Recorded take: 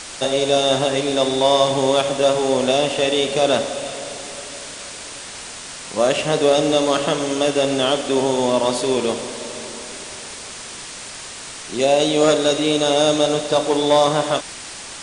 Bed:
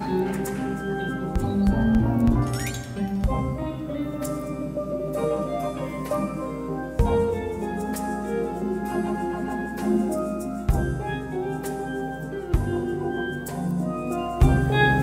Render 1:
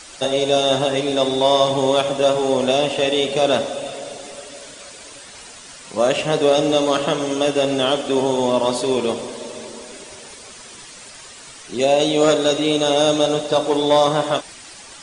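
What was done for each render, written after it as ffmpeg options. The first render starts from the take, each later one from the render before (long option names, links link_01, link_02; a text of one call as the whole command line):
ffmpeg -i in.wav -af "afftdn=noise_reduction=9:noise_floor=-34" out.wav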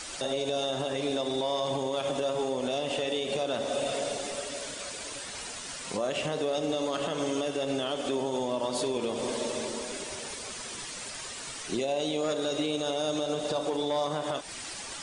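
ffmpeg -i in.wav -af "acompressor=threshold=-24dB:ratio=6,alimiter=limit=-20.5dB:level=0:latency=1:release=63" out.wav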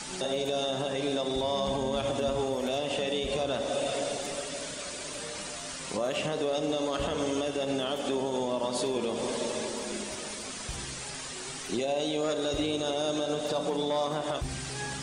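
ffmpeg -i in.wav -i bed.wav -filter_complex "[1:a]volume=-19dB[link_01];[0:a][link_01]amix=inputs=2:normalize=0" out.wav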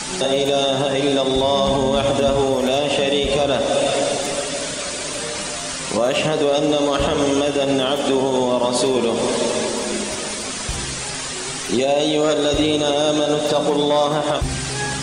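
ffmpeg -i in.wav -af "volume=12dB" out.wav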